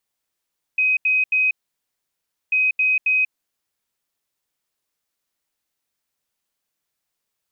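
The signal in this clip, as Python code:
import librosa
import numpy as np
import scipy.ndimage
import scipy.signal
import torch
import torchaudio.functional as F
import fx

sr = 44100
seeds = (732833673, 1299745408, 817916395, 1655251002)

y = fx.beep_pattern(sr, wave='sine', hz=2520.0, on_s=0.19, off_s=0.08, beeps=3, pause_s=1.01, groups=2, level_db=-15.0)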